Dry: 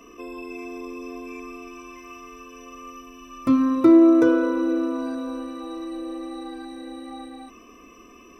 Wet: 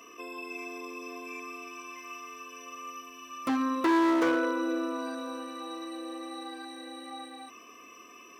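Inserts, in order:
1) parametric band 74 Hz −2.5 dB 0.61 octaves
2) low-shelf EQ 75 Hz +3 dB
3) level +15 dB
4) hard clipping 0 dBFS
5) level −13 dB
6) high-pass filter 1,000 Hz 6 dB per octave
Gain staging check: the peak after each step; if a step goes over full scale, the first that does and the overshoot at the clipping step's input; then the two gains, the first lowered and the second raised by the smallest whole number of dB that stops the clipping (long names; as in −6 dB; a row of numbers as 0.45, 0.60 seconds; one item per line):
−6.0, −5.5, +9.5, 0.0, −13.0, −12.5 dBFS
step 3, 9.5 dB
step 3 +5 dB, step 5 −3 dB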